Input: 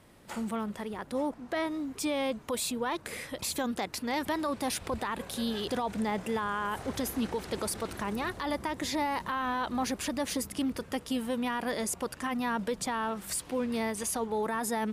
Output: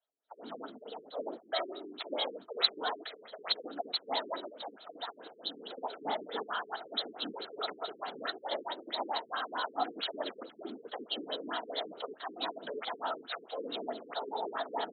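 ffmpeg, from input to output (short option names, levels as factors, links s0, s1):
-filter_complex "[0:a]agate=range=0.0355:threshold=0.00794:ratio=16:detection=peak,aecho=1:1:1.3:0.36,asettb=1/sr,asplit=3[s0][s1][s2];[s0]atrim=end=4.384[s3];[s1]atrim=start=4.38:end=5.78,asetpts=PTS-STARTPTS,afade=t=in:d=0.004:c=qsin,afade=t=out:st=1.396:d=0.004:c=qsin,acompressor=threshold=0.0158:ratio=3[s4];[s2]atrim=start=5.776[s5];[s3][s4]acrossfade=d=0.004:c1=hsin:c2=qsin[s6];[s6][s5]acrossfade=d=0.004:c1=qsin:c2=hsin,flanger=delay=1.8:depth=4.4:regen=-67:speed=1.2:shape=triangular,afftfilt=real='hypot(re,im)*cos(2*PI*random(0))':imag='hypot(re,im)*sin(2*PI*random(1))':win_size=512:overlap=0.75,aexciter=amount=15.7:drive=8.5:freq=3700,asoftclip=type=hard:threshold=0.376,highpass=f=300:w=0.5412,highpass=f=300:w=1.3066,equalizer=f=440:t=q:w=4:g=7,equalizer=f=680:t=q:w=4:g=9,equalizer=f=1300:t=q:w=4:g=9,equalizer=f=2000:t=q:w=4:g=4,lowpass=f=5600:w=0.5412,lowpass=f=5600:w=1.3066,acrossover=split=470[s7][s8];[s7]adelay=60[s9];[s9][s8]amix=inputs=2:normalize=0,afftfilt=real='re*lt(b*sr/1024,450*pow(4400/450,0.5+0.5*sin(2*PI*4.6*pts/sr)))':imag='im*lt(b*sr/1024,450*pow(4400/450,0.5+0.5*sin(2*PI*4.6*pts/sr)))':win_size=1024:overlap=0.75,volume=1.41"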